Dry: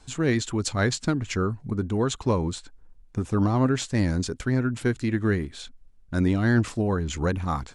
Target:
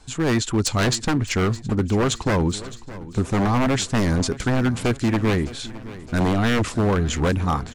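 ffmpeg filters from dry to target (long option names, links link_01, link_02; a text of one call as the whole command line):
ffmpeg -i in.wav -filter_complex "[0:a]dynaudnorm=framelen=110:gausssize=7:maxgain=3dB,aeval=exprs='0.133*(abs(mod(val(0)/0.133+3,4)-2)-1)':channel_layout=same,asplit=2[link_01][link_02];[link_02]aecho=0:1:614|1228|1842|2456|3070:0.141|0.0763|0.0412|0.0222|0.012[link_03];[link_01][link_03]amix=inputs=2:normalize=0,volume=3.5dB" out.wav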